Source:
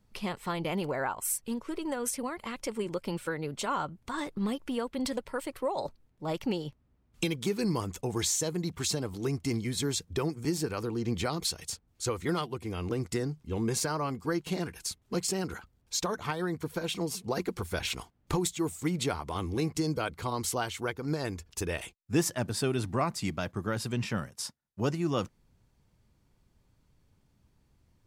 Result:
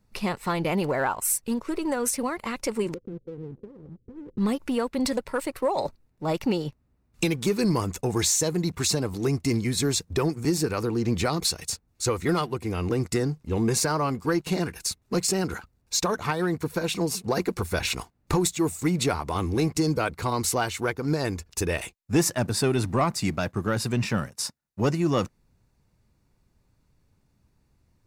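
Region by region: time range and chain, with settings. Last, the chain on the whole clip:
2.94–4.38 block floating point 3-bit + compressor 2:1, threshold -43 dBFS + rippled Chebyshev low-pass 520 Hz, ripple 3 dB
whole clip: notch 3200 Hz, Q 8; sample leveller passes 1; gain +3 dB

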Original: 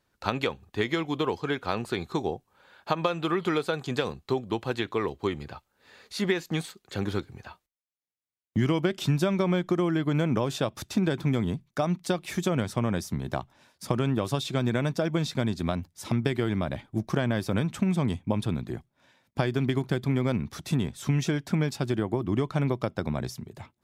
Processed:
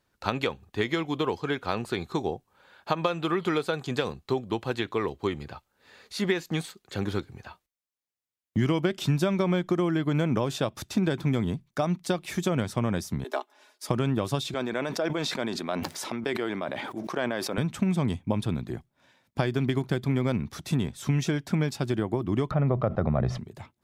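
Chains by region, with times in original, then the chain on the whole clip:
13.24–13.89 steep high-pass 270 Hz 96 dB/oct + comb 4.8 ms, depth 76%
14.54–17.58 HPF 380 Hz + high shelf 4200 Hz -8 dB + sustainer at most 24 dB/s
22.51–23.38 LPF 1400 Hz + comb 1.6 ms, depth 42% + fast leveller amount 70%
whole clip: dry

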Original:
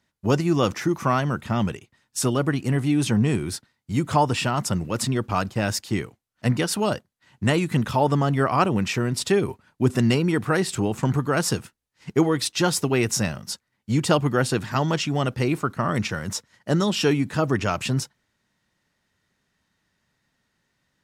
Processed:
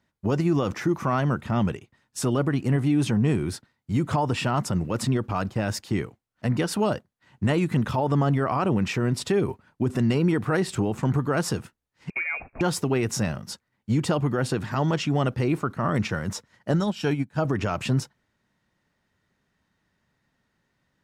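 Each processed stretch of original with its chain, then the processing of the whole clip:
12.1–12.61 compressor 5:1, threshold -23 dBFS + inverted band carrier 2600 Hz
16.73–17.45 high shelf 4700 Hz +2 dB + comb 1.3 ms, depth 33% + upward expander 2.5:1, over -33 dBFS
whole clip: high shelf 2600 Hz -8.5 dB; limiter -16 dBFS; gain +1.5 dB

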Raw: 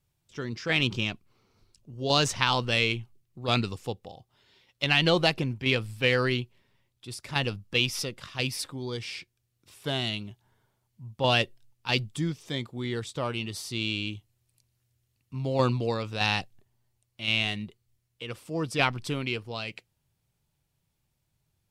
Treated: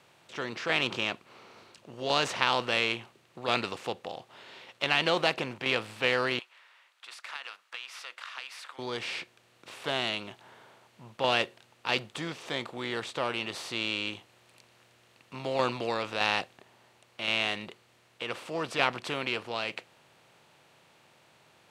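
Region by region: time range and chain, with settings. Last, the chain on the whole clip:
6.39–8.79 ladder high-pass 1100 Hz, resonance 40% + compressor 5:1, threshold -43 dBFS
whole clip: per-bin compression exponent 0.6; HPF 750 Hz 6 dB/oct; high shelf 2900 Hz -11 dB

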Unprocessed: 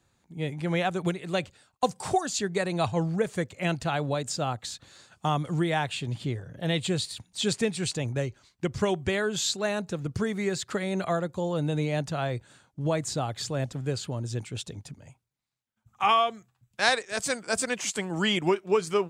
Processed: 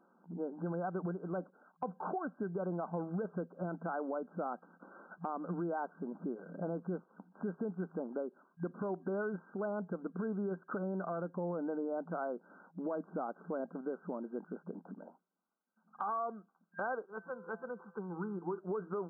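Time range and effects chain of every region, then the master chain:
17.06–18.58 fixed phaser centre 420 Hz, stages 8 + resonator 170 Hz, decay 0.78 s
whole clip: FFT band-pass 170–1600 Hz; limiter -23.5 dBFS; compressor 2:1, threshold -49 dBFS; gain +5.5 dB

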